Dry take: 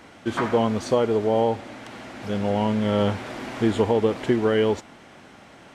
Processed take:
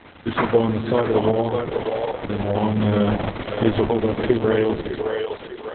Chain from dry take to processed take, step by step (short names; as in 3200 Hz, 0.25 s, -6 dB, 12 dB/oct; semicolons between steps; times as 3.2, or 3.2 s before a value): Chebyshev low-pass 8000 Hz, order 2; bell 83 Hz +7 dB 0.61 oct; on a send: split-band echo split 360 Hz, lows 0.149 s, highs 0.603 s, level -5.5 dB; on the sum: gain +4 dB; Opus 6 kbps 48000 Hz